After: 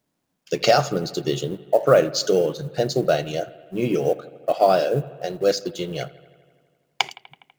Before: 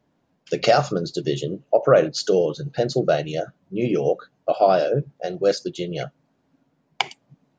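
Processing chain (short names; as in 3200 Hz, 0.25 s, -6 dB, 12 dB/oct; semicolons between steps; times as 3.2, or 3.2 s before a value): G.711 law mismatch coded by A; high shelf 5200 Hz +8 dB; on a send: analogue delay 82 ms, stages 2048, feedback 73%, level -20 dB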